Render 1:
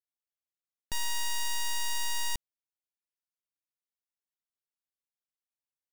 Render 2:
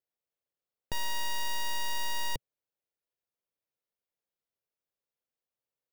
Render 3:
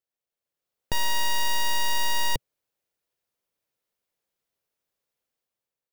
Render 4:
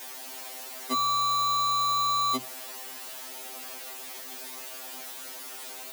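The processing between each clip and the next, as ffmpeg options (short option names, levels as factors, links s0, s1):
-af "equalizer=f=125:t=o:w=1:g=6,equalizer=f=500:t=o:w=1:g=11,equalizer=f=8000:t=o:w=1:g=-8"
-af "dynaudnorm=f=170:g=7:m=2.51"
-af "aeval=exprs='val(0)+0.5*0.0266*sgn(val(0))':c=same,afreqshift=210,afftfilt=real='re*2.45*eq(mod(b,6),0)':imag='im*2.45*eq(mod(b,6),0)':win_size=2048:overlap=0.75,volume=1.19"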